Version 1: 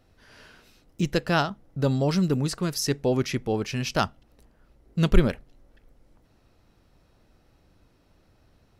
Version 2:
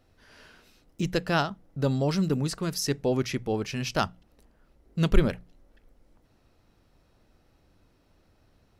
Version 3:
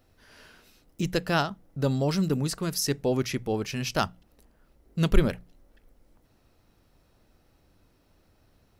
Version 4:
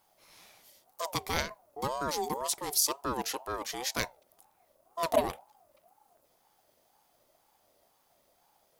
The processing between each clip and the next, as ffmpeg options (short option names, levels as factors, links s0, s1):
-af "bandreject=f=60:t=h:w=6,bandreject=f=120:t=h:w=6,bandreject=f=180:t=h:w=6,volume=0.794"
-af "highshelf=f=11000:g=10"
-af "crystalizer=i=3:c=0,aeval=exprs='val(0)*sin(2*PI*710*n/s+710*0.2/2*sin(2*PI*2*n/s))':c=same,volume=0.531"